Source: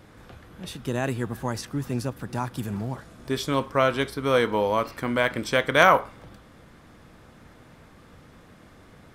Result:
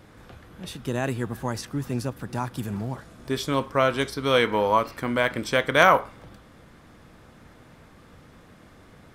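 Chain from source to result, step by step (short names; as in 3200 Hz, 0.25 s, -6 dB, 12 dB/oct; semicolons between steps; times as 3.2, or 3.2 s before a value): 3.97–4.77 bell 8600 Hz -> 1000 Hz +8 dB 0.77 oct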